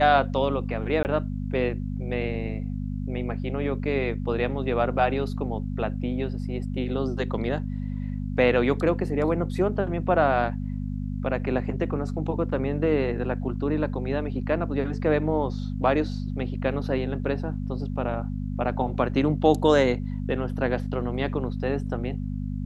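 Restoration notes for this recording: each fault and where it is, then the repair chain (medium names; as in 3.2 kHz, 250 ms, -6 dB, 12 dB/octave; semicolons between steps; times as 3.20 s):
hum 50 Hz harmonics 5 -30 dBFS
1.03–1.05 s: dropout 19 ms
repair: de-hum 50 Hz, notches 5; interpolate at 1.03 s, 19 ms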